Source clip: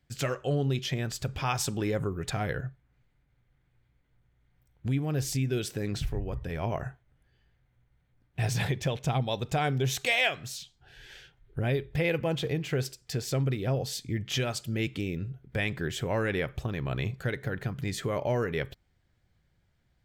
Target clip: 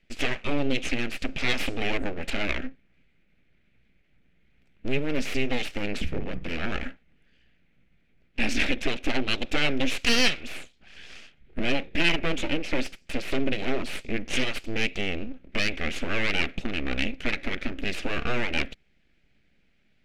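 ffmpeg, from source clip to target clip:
-af "aeval=exprs='abs(val(0))':c=same,equalizer=f=100:t=o:w=0.67:g=-10,equalizer=f=1000:t=o:w=0.67:g=-11,equalizer=f=2500:t=o:w=0.67:g=10,adynamicsmooth=sensitivity=1.5:basefreq=6200,volume=2.11"

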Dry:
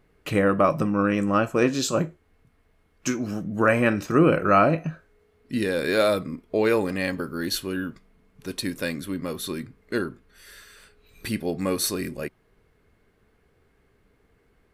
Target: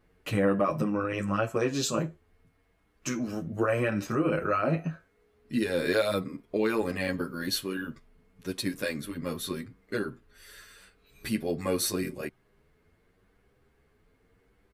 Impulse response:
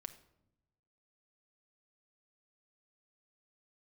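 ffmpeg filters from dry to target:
-filter_complex "[0:a]alimiter=limit=0.2:level=0:latency=1:release=99,asplit=2[s0][s1];[s1]adelay=8.9,afreqshift=0.85[s2];[s0][s2]amix=inputs=2:normalize=1"

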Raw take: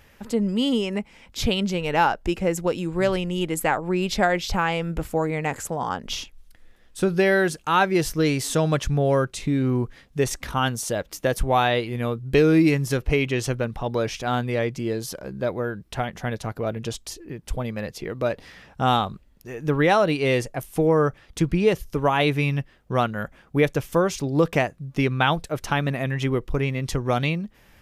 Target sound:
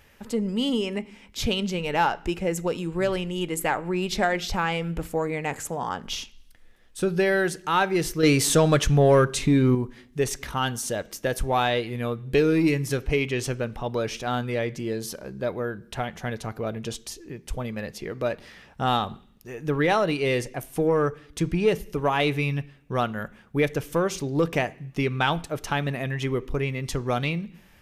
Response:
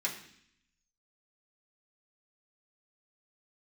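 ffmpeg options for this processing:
-filter_complex "[0:a]aeval=exprs='0.501*(cos(1*acos(clip(val(0)/0.501,-1,1)))-cos(1*PI/2))+0.00891*(cos(4*acos(clip(val(0)/0.501,-1,1)))-cos(4*PI/2))+0.0158*(cos(5*acos(clip(val(0)/0.501,-1,1)))-cos(5*PI/2))':c=same,asplit=2[s0][s1];[1:a]atrim=start_sample=2205,asetrate=48510,aresample=44100[s2];[s1][s2]afir=irnorm=-1:irlink=0,volume=0.178[s3];[s0][s3]amix=inputs=2:normalize=0,asettb=1/sr,asplit=3[s4][s5][s6];[s4]atrim=end=8.234[s7];[s5]atrim=start=8.23:end=9.75,asetpts=PTS-STARTPTS,afade=t=in:d=0.004:c=qsin,afade=t=out:st=1.516:d=0.004:c=qsin,acontrast=74[s8];[s6]atrim=start=9.746[s9];[s7][s8]acrossfade=d=0.004:c1=hsin:c2=qsin[s10];[s10][s9]acrossfade=d=0.004:c1=qsin:c2=hsin,volume=0.668"

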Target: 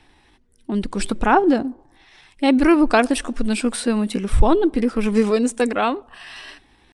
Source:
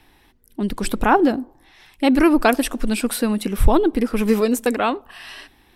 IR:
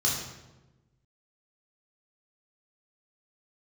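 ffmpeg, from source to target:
-af "aresample=22050,aresample=44100,atempo=0.83"

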